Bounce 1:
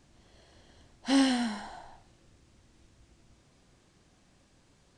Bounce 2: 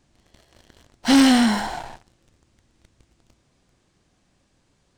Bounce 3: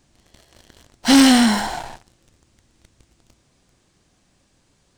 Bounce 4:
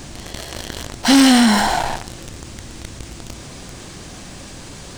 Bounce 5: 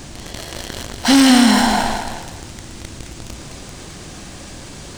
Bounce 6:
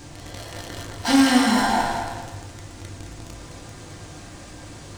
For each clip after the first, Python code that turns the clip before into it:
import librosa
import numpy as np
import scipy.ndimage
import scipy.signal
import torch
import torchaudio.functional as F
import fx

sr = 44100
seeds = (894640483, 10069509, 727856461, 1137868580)

y1 = fx.leveller(x, sr, passes=3)
y1 = y1 * librosa.db_to_amplitude(4.5)
y2 = fx.high_shelf(y1, sr, hz=4800.0, db=5.5)
y2 = y2 * librosa.db_to_amplitude(2.5)
y3 = fx.env_flatten(y2, sr, amount_pct=50)
y4 = fx.echo_feedback(y3, sr, ms=214, feedback_pct=29, wet_db=-7)
y5 = fx.rev_fdn(y4, sr, rt60_s=0.81, lf_ratio=0.75, hf_ratio=0.3, size_ms=59.0, drr_db=-1.0)
y5 = y5 * librosa.db_to_amplitude(-8.5)